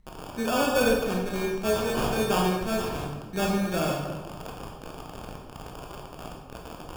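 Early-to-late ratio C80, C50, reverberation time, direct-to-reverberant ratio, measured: 4.5 dB, 2.0 dB, 1.2 s, −1.5 dB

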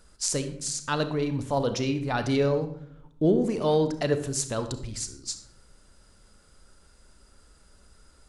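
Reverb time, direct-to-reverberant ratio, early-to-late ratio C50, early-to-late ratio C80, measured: 0.70 s, 9.0 dB, 10.5 dB, 14.0 dB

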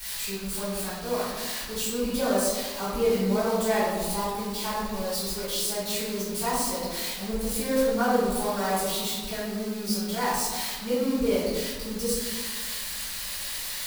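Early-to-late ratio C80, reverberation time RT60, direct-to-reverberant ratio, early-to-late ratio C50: 1.5 dB, 1.6 s, −13.0 dB, −1.5 dB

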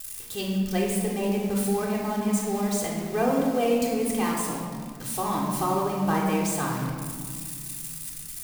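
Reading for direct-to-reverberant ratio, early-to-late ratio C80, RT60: −4.5 dB, 3.5 dB, 2.1 s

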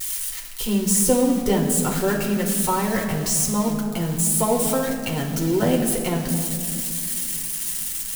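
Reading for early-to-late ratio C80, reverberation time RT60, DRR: 7.0 dB, 2.4 s, −1.5 dB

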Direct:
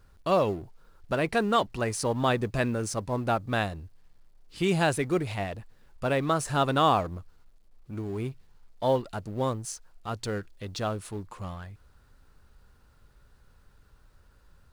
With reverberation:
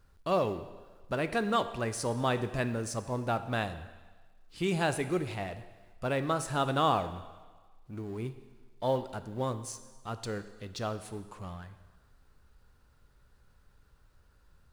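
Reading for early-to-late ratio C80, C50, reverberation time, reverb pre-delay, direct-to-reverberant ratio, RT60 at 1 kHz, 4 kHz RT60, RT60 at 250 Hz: 13.5 dB, 12.5 dB, 1.4 s, 13 ms, 10.5 dB, 1.4 s, 1.3 s, 1.3 s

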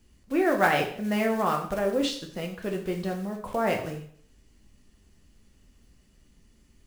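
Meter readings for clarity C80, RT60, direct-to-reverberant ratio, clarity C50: 12.5 dB, 0.55 s, 1.5 dB, 8.0 dB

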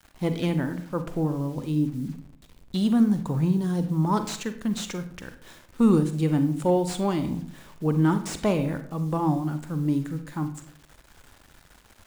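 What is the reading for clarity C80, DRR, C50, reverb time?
14.5 dB, 9.0 dB, 11.0 dB, 0.60 s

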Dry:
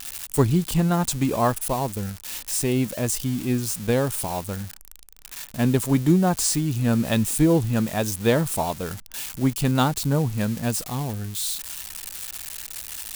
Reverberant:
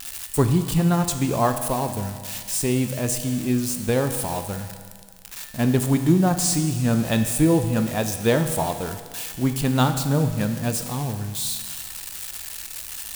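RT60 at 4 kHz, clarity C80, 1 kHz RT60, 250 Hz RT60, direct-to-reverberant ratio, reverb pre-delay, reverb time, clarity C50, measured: 1.8 s, 9.5 dB, 1.8 s, 1.8 s, 6.5 dB, 13 ms, 1.8 s, 8.5 dB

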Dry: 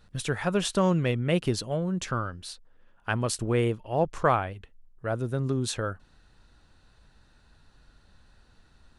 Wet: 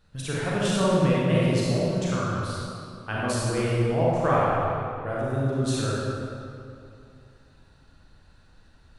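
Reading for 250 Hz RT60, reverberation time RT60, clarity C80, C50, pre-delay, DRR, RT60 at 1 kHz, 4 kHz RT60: 2.9 s, 2.6 s, −2.0 dB, −4.5 dB, 31 ms, −7.0 dB, 2.5 s, 1.7 s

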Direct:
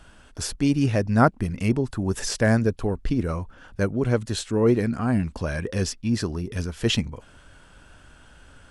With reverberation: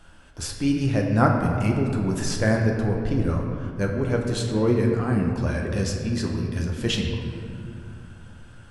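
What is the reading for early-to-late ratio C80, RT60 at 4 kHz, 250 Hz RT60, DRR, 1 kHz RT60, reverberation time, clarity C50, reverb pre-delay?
4.5 dB, 1.4 s, 3.4 s, 0.0 dB, 2.4 s, 2.5 s, 3.5 dB, 6 ms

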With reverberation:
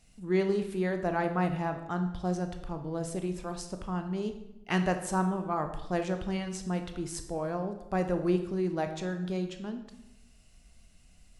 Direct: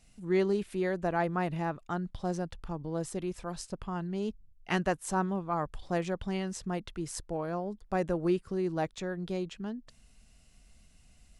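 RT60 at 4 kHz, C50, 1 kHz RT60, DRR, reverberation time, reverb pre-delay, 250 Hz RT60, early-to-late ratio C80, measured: 0.70 s, 9.0 dB, 0.80 s, 6.5 dB, 0.90 s, 17 ms, 1.0 s, 12.0 dB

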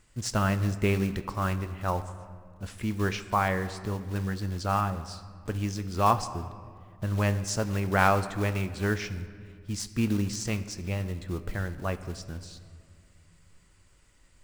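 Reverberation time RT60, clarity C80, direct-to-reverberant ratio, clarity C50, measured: 2.0 s, 14.0 dB, 10.0 dB, 13.0 dB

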